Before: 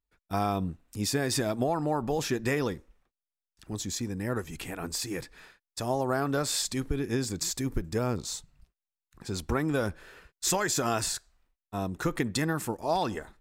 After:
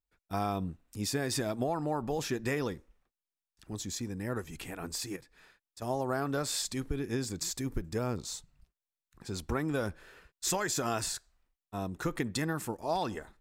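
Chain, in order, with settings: 5.16–5.82 compressor 2.5:1, threshold -51 dBFS, peak gain reduction 13 dB; gain -4 dB

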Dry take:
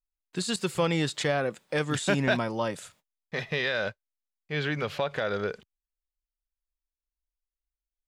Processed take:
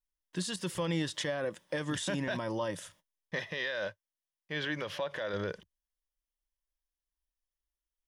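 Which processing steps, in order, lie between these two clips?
3.38–5.34 low shelf 130 Hz -11.5 dB; limiter -23.5 dBFS, peak gain reduction 10.5 dB; ripple EQ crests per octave 1.2, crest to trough 7 dB; gain -2 dB

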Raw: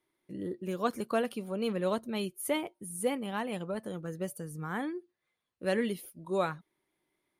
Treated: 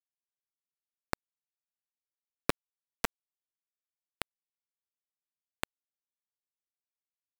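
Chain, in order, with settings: opening faded in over 1.92 s; graphic EQ 125/250/500/1000/4000/8000 Hz +5/+11/+8/-8/+7/-6 dB; compressor 8:1, threshold -31 dBFS, peak gain reduction 16 dB; bit-crush 4-bit; gain +6 dB

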